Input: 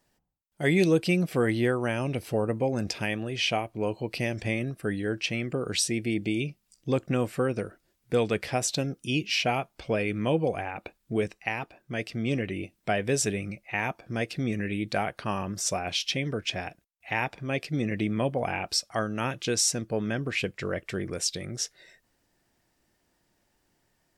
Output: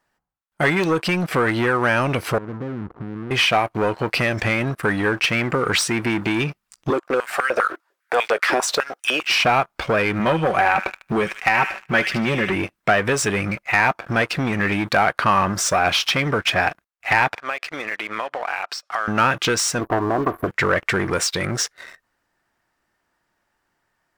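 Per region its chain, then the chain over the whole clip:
2.38–3.31 s: inverse Chebyshev low-pass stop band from 1.7 kHz, stop band 70 dB + compression 2.5:1, threshold -44 dBFS
6.90–9.45 s: dynamic bell 1.5 kHz, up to -4 dB, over -41 dBFS, Q 0.72 + compression 4:1, threshold -26 dBFS + step-sequenced high-pass 10 Hz 340–2100 Hz
10.19–12.55 s: comb 5.3 ms, depth 46% + feedback echo behind a high-pass 75 ms, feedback 44%, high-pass 2 kHz, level -7 dB
17.35–19.08 s: high-pass 700 Hz + distance through air 51 m + compression 12:1, threshold -40 dBFS
19.79–20.47 s: spectral peaks clipped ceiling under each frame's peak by 14 dB + brick-wall FIR band-stop 1.2–11 kHz + comb 2.9 ms, depth 42%
whole clip: compression, threshold -29 dBFS; waveshaping leveller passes 3; peaking EQ 1.3 kHz +14 dB 1.7 oct

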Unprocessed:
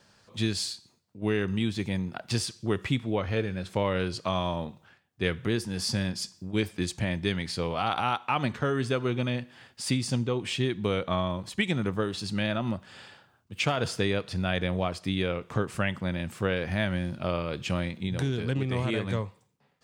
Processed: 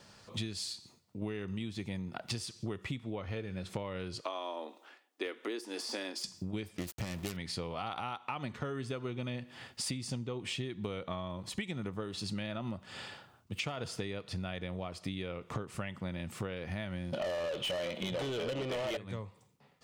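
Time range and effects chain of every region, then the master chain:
4.21–6.24 s: elliptic high-pass 280 Hz, stop band 50 dB + de-esser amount 90%
6.78–7.37 s: self-modulated delay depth 0.48 ms + small samples zeroed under -40.5 dBFS
17.13–18.97 s: small resonant body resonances 580/3000 Hz, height 15 dB, ringing for 20 ms + overdrive pedal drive 28 dB, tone 5.1 kHz, clips at -10 dBFS
whole clip: band-stop 1.6 kHz, Q 12; compression 12:1, threshold -38 dBFS; trim +3.5 dB

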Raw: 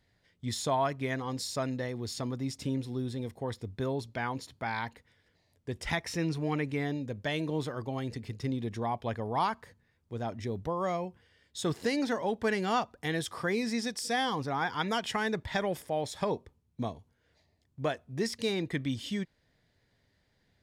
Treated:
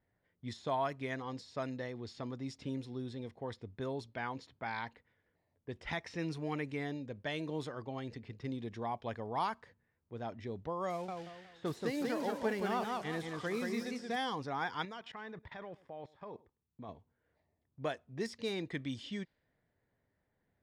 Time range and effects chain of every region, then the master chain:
10.90–14.16 s: zero-crossing glitches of -32 dBFS + treble shelf 6.1 kHz -9 dB + modulated delay 182 ms, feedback 35%, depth 137 cents, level -3.5 dB
14.85–16.89 s: peaking EQ 1.1 kHz +4 dB 0.41 oct + level held to a coarse grid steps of 20 dB + delay 103 ms -21.5 dB
whole clip: de-esser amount 95%; level-controlled noise filter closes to 1.5 kHz, open at -26 dBFS; bass shelf 160 Hz -6 dB; trim -5 dB

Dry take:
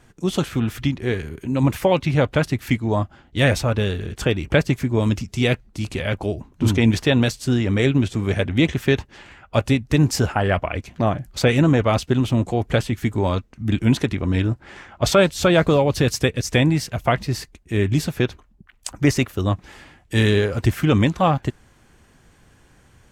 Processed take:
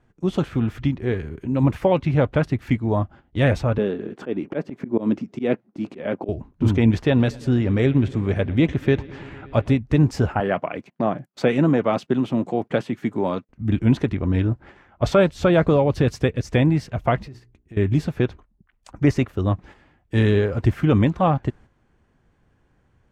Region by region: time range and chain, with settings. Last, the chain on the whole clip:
3.78–6.29 s: high-pass 230 Hz 24 dB/octave + tilt EQ -3 dB/octave + slow attack 116 ms
6.95–9.78 s: upward compressor, threshold -30 dBFS + bucket-brigade echo 115 ms, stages 4096, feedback 84%, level -23 dB
10.40–13.49 s: high-pass 160 Hz 24 dB/octave + gate -43 dBFS, range -21 dB
17.26–17.77 s: hum notches 60/120/180/240/300/360/420 Hz + compression 12:1, threshold -35 dBFS
whole clip: low-pass 1.3 kHz 6 dB/octave; gate -41 dBFS, range -8 dB

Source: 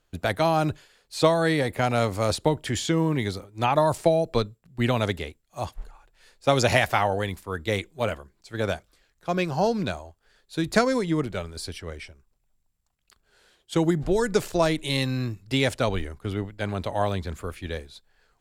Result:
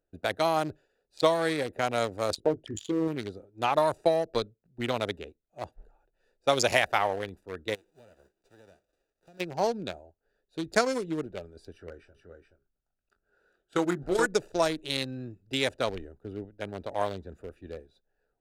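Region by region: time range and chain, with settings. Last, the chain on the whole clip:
2.35–3.08 s: resonances exaggerated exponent 2 + doubling 19 ms -7.5 dB
7.74–9.39 s: formants flattened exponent 0.3 + peaking EQ 12 kHz -8.5 dB 0.29 oct + compression 5:1, threshold -41 dBFS
11.72–14.26 s: peaking EQ 1.4 kHz +11 dB 0.5 oct + doubling 22 ms -9 dB + delay 426 ms -6 dB
whole clip: local Wiener filter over 41 samples; tone controls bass -12 dB, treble +5 dB; trim -2 dB

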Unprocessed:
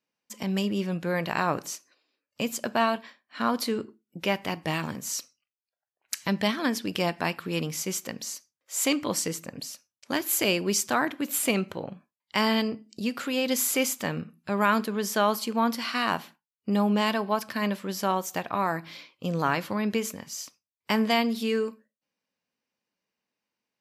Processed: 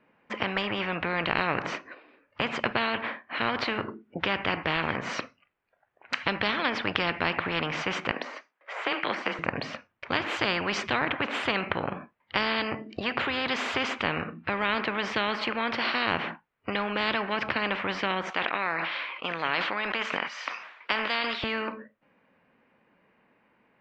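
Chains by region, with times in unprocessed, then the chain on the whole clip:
8.11–9.39 s: de-esser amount 90% + high-pass 490 Hz + frequency shift +24 Hz
18.30–21.44 s: high-pass 1.1 kHz + decay stretcher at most 74 dB/s
whole clip: low-pass 2.2 kHz 24 dB/octave; spectrum-flattening compressor 4:1; trim +6.5 dB

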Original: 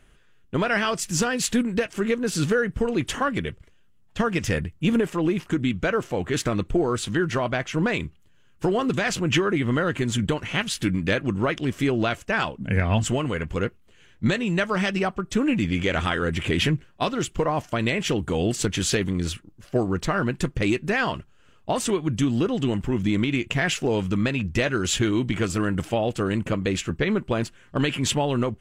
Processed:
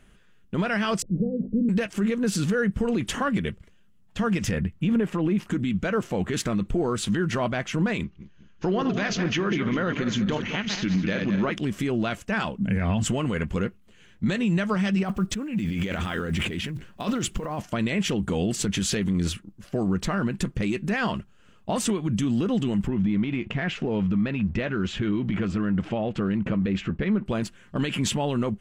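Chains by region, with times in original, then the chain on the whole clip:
1.02–1.69 s: CVSD coder 64 kbps + steep low-pass 530 Hz 48 dB/octave + hum notches 50/100/150/200/250 Hz
4.51–5.38 s: tone controls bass +1 dB, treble -9 dB + tape noise reduction on one side only encoder only
8.03–11.52 s: backward echo that repeats 101 ms, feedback 57%, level -8.5 dB + Chebyshev low-pass 6.5 kHz, order 6 + peaking EQ 94 Hz -5.5 dB 1.7 oct
15.03–17.60 s: block-companded coder 7-bit + compressor with a negative ratio -30 dBFS
22.87–27.26 s: compression 3:1, threshold -30 dBFS + waveshaping leveller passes 1 + low-pass 2.9 kHz
whole clip: peaking EQ 200 Hz +10 dB 0.36 oct; peak limiter -16.5 dBFS

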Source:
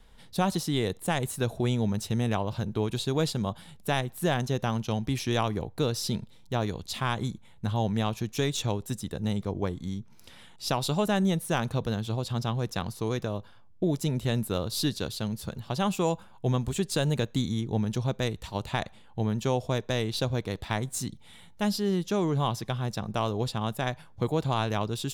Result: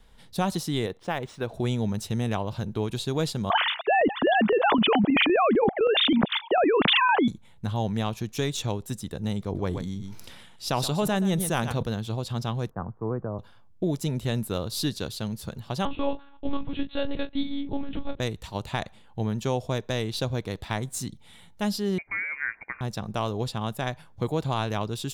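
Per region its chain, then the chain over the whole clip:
0.86–1.54 s: tone controls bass -7 dB, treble -11 dB + decimation joined by straight lines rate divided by 3×
3.50–7.28 s: formants replaced by sine waves + square tremolo 3.9 Hz, depth 65%, duty 25% + level flattener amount 100%
9.42–11.83 s: delay 126 ms -14.5 dB + decay stretcher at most 33 dB/s
12.70–13.39 s: steep low-pass 1.4 kHz + three bands expanded up and down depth 70%
15.85–18.20 s: doubling 31 ms -9 dB + monotone LPC vocoder at 8 kHz 280 Hz
21.98–22.81 s: Bessel high-pass 400 Hz, order 4 + frequency inversion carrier 2.6 kHz
whole clip: none

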